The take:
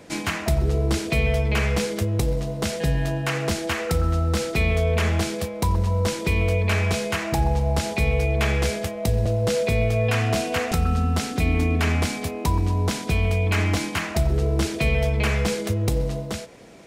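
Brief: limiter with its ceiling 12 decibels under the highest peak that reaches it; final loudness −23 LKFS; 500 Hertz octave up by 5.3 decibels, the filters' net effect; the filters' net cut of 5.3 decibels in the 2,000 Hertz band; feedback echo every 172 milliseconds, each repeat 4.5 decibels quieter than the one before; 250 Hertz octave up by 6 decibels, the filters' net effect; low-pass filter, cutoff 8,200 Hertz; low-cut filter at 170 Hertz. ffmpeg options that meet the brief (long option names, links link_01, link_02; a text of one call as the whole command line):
ffmpeg -i in.wav -af "highpass=170,lowpass=8200,equalizer=frequency=250:width_type=o:gain=8.5,equalizer=frequency=500:width_type=o:gain=4.5,equalizer=frequency=2000:width_type=o:gain=-7,alimiter=limit=-19.5dB:level=0:latency=1,aecho=1:1:172|344|516|688|860|1032|1204|1376|1548:0.596|0.357|0.214|0.129|0.0772|0.0463|0.0278|0.0167|0.01,volume=3dB" out.wav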